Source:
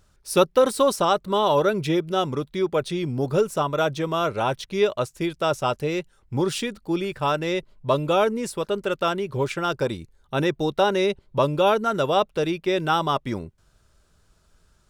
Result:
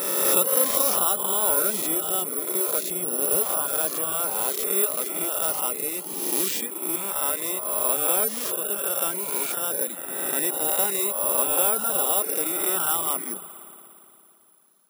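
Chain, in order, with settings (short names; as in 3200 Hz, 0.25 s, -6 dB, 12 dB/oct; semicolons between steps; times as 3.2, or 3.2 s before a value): spectral swells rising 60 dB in 1.87 s; dynamic EQ 5900 Hz, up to +6 dB, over -41 dBFS, Q 0.74; spring tank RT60 2.8 s, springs 56 ms, chirp 35 ms, DRR 8 dB; careless resampling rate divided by 4×, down none, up zero stuff; reverb removal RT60 0.66 s; brick-wall FIR high-pass 160 Hz; gain -11 dB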